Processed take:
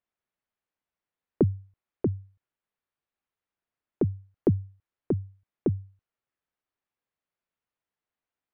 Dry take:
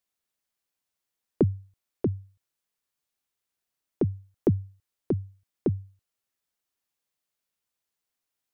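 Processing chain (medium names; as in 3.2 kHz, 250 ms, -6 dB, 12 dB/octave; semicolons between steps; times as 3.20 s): low-pass 2.2 kHz 12 dB/octave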